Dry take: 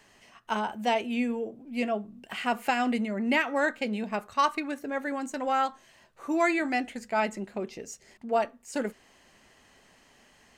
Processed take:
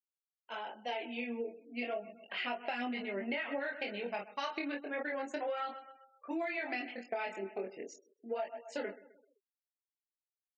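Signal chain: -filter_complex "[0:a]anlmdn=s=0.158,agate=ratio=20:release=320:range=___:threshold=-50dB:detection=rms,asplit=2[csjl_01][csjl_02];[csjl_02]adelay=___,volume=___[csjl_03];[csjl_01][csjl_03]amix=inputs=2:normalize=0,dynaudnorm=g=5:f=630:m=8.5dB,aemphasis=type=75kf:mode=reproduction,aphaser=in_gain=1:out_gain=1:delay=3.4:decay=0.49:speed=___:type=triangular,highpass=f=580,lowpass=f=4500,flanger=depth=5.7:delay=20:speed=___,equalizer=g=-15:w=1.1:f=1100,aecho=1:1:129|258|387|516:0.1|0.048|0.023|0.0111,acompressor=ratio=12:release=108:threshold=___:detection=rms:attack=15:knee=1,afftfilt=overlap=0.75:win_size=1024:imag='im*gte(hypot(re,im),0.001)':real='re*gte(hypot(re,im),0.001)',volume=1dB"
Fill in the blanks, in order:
-10dB, 21, -4.5dB, 1.4, 0.34, -35dB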